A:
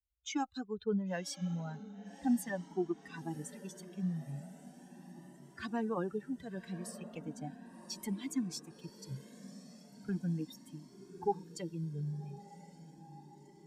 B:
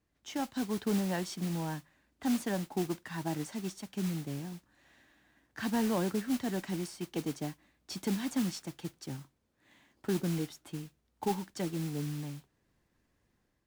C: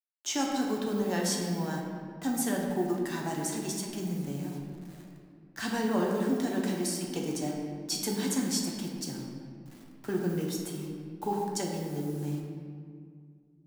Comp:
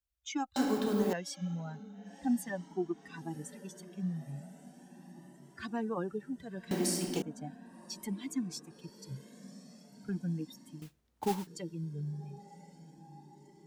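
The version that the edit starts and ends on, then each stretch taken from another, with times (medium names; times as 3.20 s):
A
0.56–1.13 s: from C
6.71–7.22 s: from C
10.82–11.47 s: from B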